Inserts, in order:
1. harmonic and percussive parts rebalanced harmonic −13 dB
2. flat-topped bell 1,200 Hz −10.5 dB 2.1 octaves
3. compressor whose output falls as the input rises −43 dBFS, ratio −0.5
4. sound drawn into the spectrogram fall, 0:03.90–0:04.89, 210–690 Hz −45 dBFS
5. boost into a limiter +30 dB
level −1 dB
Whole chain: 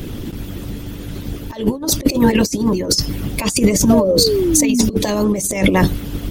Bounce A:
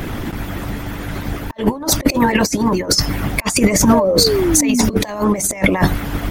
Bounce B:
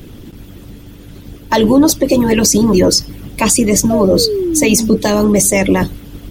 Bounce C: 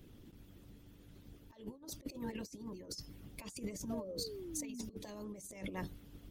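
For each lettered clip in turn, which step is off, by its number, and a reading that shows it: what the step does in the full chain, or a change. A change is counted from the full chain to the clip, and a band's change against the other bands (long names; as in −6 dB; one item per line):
2, 1 kHz band +4.0 dB
3, change in crest factor −3.5 dB
5, change in crest factor +4.0 dB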